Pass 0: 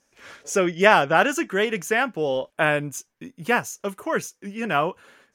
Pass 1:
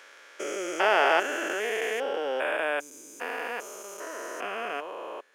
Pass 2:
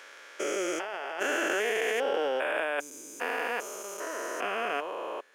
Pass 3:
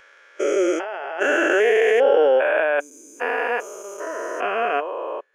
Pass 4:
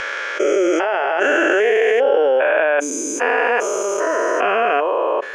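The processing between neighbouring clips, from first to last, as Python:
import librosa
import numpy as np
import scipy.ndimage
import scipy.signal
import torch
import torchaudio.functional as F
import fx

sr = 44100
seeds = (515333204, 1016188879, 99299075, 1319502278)

y1 = fx.spec_steps(x, sr, hold_ms=400)
y1 = scipy.signal.sosfilt(scipy.signal.butter(4, 360.0, 'highpass', fs=sr, output='sos'), y1)
y2 = fx.over_compress(y1, sr, threshold_db=-30.0, ratio=-1.0)
y3 = fx.spectral_expand(y2, sr, expansion=1.5)
y3 = y3 * librosa.db_to_amplitude(9.0)
y4 = scipy.signal.sosfilt(scipy.signal.butter(2, 7300.0, 'lowpass', fs=sr, output='sos'), y3)
y4 = fx.env_flatten(y4, sr, amount_pct=70)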